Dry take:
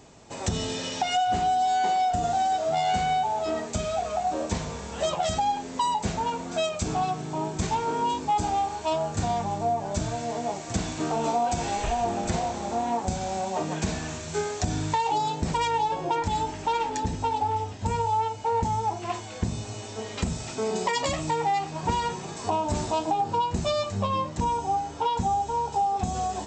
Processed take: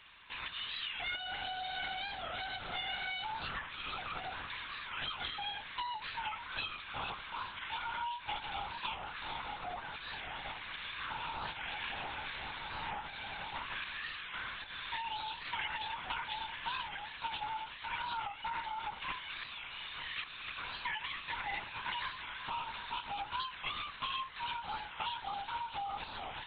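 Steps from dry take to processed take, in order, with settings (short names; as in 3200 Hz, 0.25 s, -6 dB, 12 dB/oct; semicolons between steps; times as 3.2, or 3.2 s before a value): HPF 1300 Hz 24 dB/oct; compressor 5:1, threshold -40 dBFS, peak gain reduction 12.5 dB; LPC vocoder at 8 kHz whisper; record warp 45 rpm, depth 160 cents; gain +4.5 dB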